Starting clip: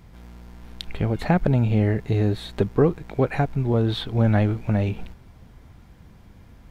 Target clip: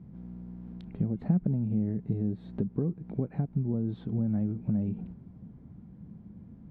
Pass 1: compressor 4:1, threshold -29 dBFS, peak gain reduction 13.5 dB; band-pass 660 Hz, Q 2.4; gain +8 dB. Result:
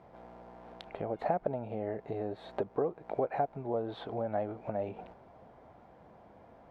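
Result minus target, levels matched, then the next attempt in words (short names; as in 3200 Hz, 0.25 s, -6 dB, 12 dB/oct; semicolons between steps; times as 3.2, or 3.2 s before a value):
500 Hz band +12.5 dB
compressor 4:1, threshold -29 dBFS, peak gain reduction 13.5 dB; band-pass 190 Hz, Q 2.4; gain +8 dB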